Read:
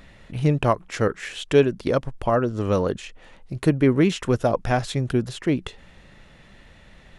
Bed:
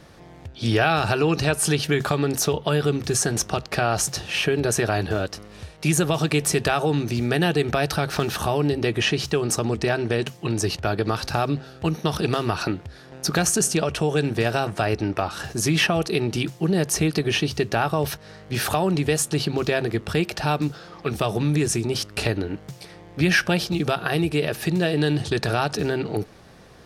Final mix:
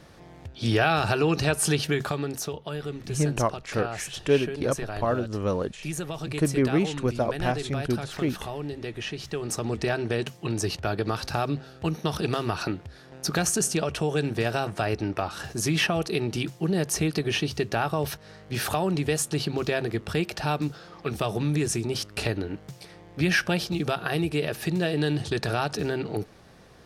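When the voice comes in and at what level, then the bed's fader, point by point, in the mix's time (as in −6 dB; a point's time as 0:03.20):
2.75 s, −5.0 dB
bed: 0:01.80 −2.5 dB
0:02.62 −12 dB
0:09.13 −12 dB
0:09.77 −4 dB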